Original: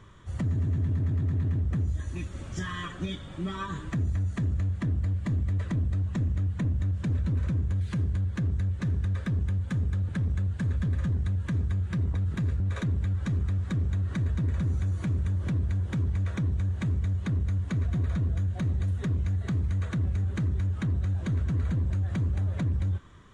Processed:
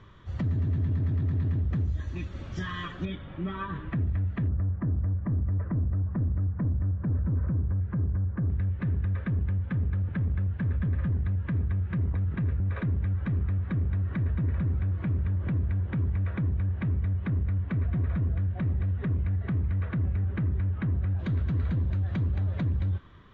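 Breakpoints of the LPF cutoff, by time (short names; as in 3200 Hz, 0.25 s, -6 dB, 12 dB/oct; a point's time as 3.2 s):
LPF 24 dB/oct
5000 Hz
from 3.05 s 2900 Hz
from 4.48 s 1500 Hz
from 8.5 s 2700 Hz
from 21.19 s 4300 Hz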